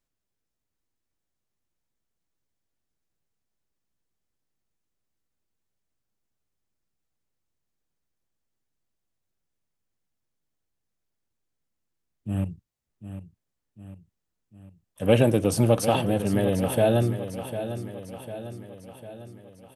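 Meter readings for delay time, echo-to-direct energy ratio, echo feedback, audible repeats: 0.75 s, -9.5 dB, 54%, 5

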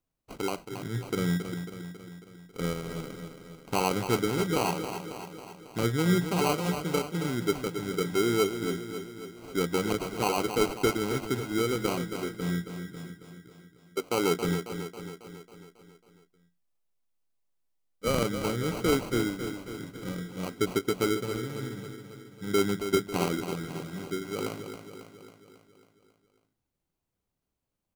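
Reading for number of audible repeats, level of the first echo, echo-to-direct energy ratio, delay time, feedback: 6, -9.0 dB, -7.0 dB, 0.273 s, 58%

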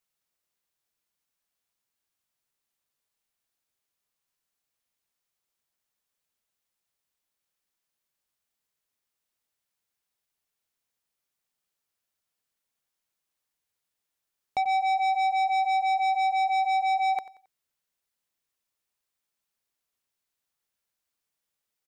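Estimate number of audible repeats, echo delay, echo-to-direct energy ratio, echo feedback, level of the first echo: 2, 90 ms, -17.5 dB, 35%, -18.0 dB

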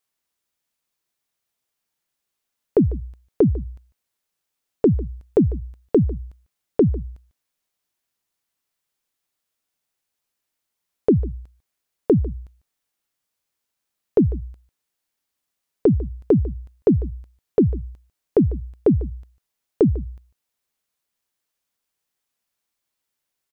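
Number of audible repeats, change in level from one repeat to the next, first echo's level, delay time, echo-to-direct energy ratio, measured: 1, no steady repeat, -19.0 dB, 0.148 s, -19.0 dB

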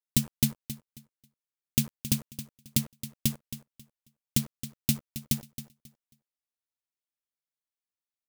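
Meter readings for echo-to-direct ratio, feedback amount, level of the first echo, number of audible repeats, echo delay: -13.0 dB, 23%, -13.0 dB, 2, 0.27 s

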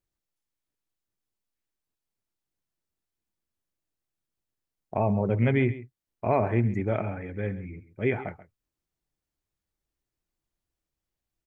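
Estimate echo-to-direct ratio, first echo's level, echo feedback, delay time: -16.0 dB, -16.0 dB, no steady repeat, 0.134 s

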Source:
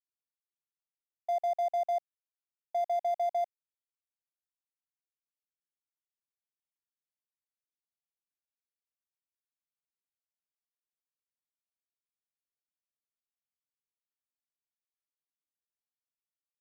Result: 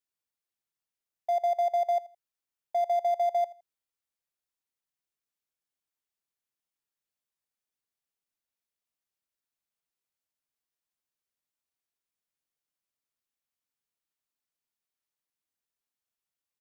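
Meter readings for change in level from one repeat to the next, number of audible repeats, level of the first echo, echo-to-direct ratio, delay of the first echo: -11.5 dB, 2, -20.0 dB, -19.5 dB, 82 ms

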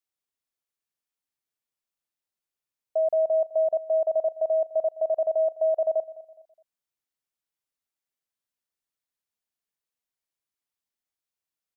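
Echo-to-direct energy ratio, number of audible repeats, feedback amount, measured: -18.0 dB, 2, 36%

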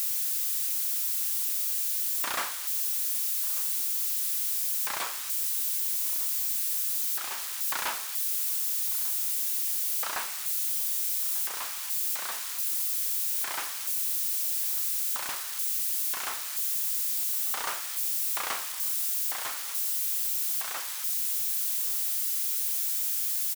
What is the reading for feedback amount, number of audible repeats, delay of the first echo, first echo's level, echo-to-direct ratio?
no steady repeat, 1, 1.192 s, -19.5 dB, -19.5 dB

